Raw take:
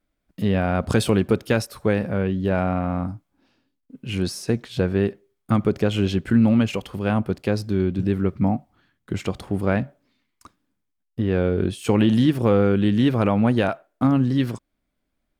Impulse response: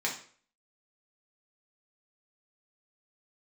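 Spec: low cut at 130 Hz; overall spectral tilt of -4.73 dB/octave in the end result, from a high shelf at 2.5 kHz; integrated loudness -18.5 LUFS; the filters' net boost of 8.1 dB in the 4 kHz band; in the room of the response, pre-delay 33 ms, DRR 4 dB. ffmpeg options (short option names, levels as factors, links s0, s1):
-filter_complex "[0:a]highpass=130,highshelf=f=2500:g=5,equalizer=f=4000:t=o:g=6.5,asplit=2[s0][s1];[1:a]atrim=start_sample=2205,adelay=33[s2];[s1][s2]afir=irnorm=-1:irlink=0,volume=0.282[s3];[s0][s3]amix=inputs=2:normalize=0,volume=1.33"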